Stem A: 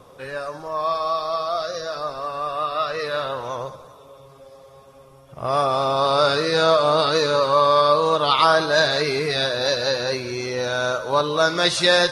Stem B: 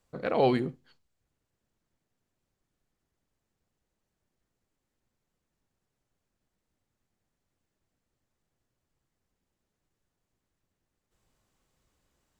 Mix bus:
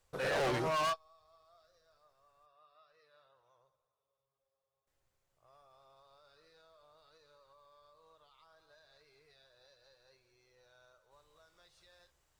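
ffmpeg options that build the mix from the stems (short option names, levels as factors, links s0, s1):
-filter_complex "[0:a]alimiter=limit=0.211:level=0:latency=1:release=184,volume=1.12[s0];[1:a]volume=1.12,asplit=3[s1][s2][s3];[s1]atrim=end=2.46,asetpts=PTS-STARTPTS,afade=t=out:st=2.456:d=0.004:c=hsin[s4];[s2]atrim=start=2.46:end=4.87,asetpts=PTS-STARTPTS,volume=0[s5];[s3]atrim=start=4.87,asetpts=PTS-STARTPTS,afade=t=in:d=0.004:c=hsin[s6];[s4][s5][s6]concat=n=3:v=0:a=1,asplit=2[s7][s8];[s8]apad=whole_len=534387[s9];[s0][s9]sidechaingate=range=0.00794:threshold=0.00158:ratio=16:detection=peak[s10];[s10][s7]amix=inputs=2:normalize=0,equalizer=f=230:t=o:w=0.95:g=-14,asoftclip=type=hard:threshold=0.0299"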